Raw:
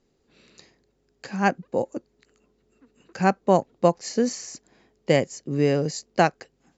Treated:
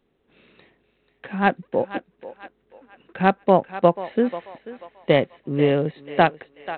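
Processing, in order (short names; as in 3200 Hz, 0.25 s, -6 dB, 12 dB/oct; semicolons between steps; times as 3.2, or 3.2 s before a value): low shelf 160 Hz -4 dB; thinning echo 0.488 s, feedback 41%, high-pass 570 Hz, level -12 dB; gain +3 dB; G.726 32 kbps 8000 Hz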